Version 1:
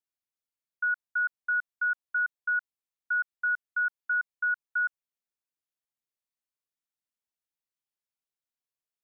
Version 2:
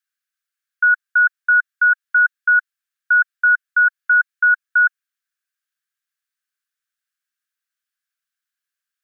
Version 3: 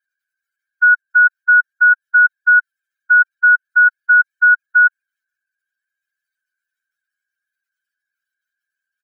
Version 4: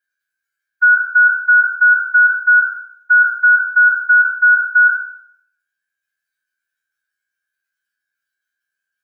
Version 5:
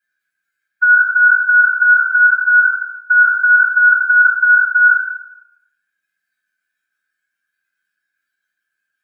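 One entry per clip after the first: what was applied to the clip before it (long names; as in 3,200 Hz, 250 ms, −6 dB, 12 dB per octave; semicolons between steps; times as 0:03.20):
elliptic high-pass filter 1,200 Hz; parametric band 1,600 Hz +13 dB 0.29 octaves; level +7.5 dB
expanding power law on the bin magnitudes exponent 2.6; comb filter 1.3 ms, depth 69%
peak hold with a decay on every bin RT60 0.65 s
convolution reverb RT60 0.70 s, pre-delay 3 ms, DRR −3.5 dB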